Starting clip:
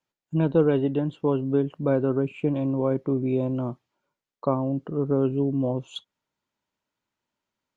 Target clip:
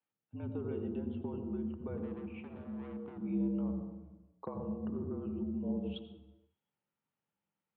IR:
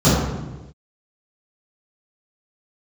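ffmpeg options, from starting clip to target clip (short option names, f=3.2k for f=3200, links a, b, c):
-filter_complex "[0:a]acompressor=threshold=-29dB:ratio=10,asettb=1/sr,asplit=3[a][b][c];[a]atrim=end=1.974[d];[b]atrim=start=1.97:end=3.18,asetpts=PTS-STARTPTS,afade=t=in:d=0.004:c=qsin,afade=t=out:st=1.206:d=0.004:c=qsin,asoftclip=type=hard:threshold=-37.5dB[e];[c]atrim=start=3.176[f];[d][e]acrossfade=d=0.004:c1=hsin:c2=qsin[g];[g][f]acrossfade=d=0.004:c1=qsin:c2=hsin,asplit=2[h][i];[1:a]atrim=start_sample=2205,adelay=73[j];[i][j]afir=irnorm=-1:irlink=0,volume=-30dB[k];[h][k]amix=inputs=2:normalize=0,highpass=f=200:t=q:w=0.5412,highpass=f=200:t=q:w=1.307,lowpass=f=3.3k:t=q:w=0.5176,lowpass=f=3.3k:t=q:w=0.7071,lowpass=f=3.3k:t=q:w=1.932,afreqshift=-56,volume=-8.5dB"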